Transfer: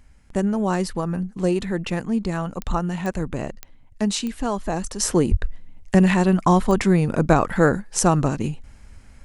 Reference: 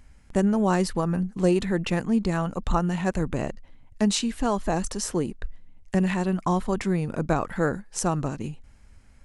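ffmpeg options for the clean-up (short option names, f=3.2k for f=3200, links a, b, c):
-filter_complex "[0:a]adeclick=t=4,asplit=3[a][b][c];[a]afade=t=out:st=5.3:d=0.02[d];[b]highpass=f=140:w=0.5412,highpass=f=140:w=1.3066,afade=t=in:st=5.3:d=0.02,afade=t=out:st=5.42:d=0.02[e];[c]afade=t=in:st=5.42:d=0.02[f];[d][e][f]amix=inputs=3:normalize=0,asetnsamples=n=441:p=0,asendcmd='5 volume volume -7.5dB',volume=0dB"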